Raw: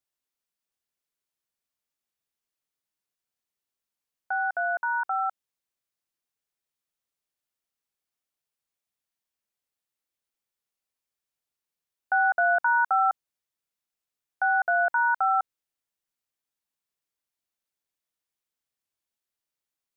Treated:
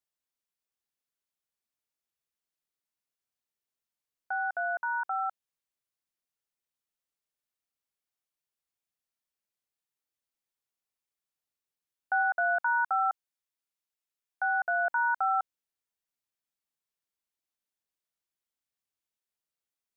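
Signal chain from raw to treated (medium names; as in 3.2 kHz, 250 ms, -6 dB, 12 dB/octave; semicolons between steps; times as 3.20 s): 12.22–14.85 s: bass shelf 380 Hz -7 dB; trim -4 dB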